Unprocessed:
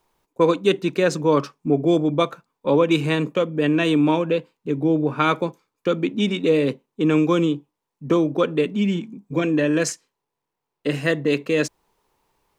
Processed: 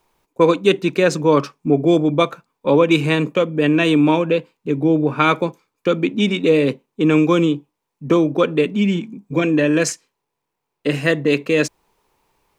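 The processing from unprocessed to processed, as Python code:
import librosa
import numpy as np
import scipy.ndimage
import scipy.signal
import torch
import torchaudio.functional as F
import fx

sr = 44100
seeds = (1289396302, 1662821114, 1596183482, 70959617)

y = fx.peak_eq(x, sr, hz=2400.0, db=3.5, octaves=0.25)
y = y * 10.0 ** (3.5 / 20.0)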